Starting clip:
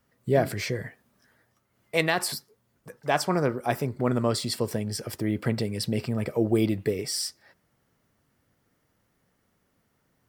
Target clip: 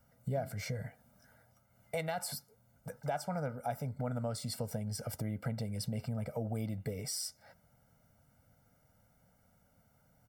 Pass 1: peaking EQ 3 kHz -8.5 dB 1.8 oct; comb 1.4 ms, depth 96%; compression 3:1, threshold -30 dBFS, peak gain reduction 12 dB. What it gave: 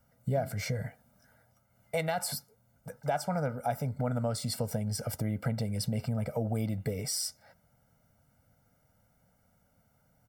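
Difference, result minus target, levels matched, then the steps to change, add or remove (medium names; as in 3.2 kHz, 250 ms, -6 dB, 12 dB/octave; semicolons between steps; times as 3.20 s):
compression: peak gain reduction -5.5 dB
change: compression 3:1, threshold -38 dBFS, peak gain reduction 17.5 dB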